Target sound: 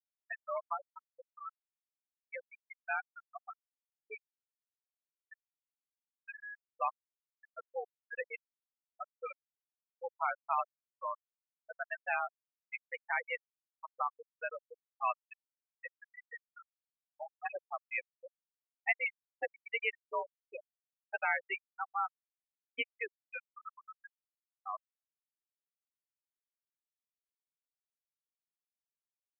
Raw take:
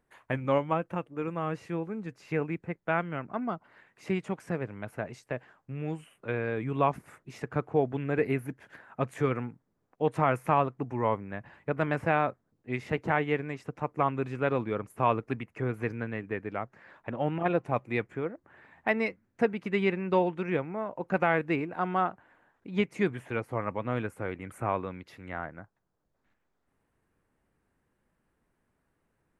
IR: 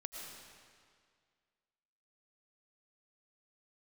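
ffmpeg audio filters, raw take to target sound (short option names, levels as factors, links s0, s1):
-af "aderivative,afreqshift=55,afftfilt=real='re*gte(hypot(re,im),0.0224)':imag='im*gte(hypot(re,im),0.0224)':win_size=1024:overlap=0.75,volume=3.55"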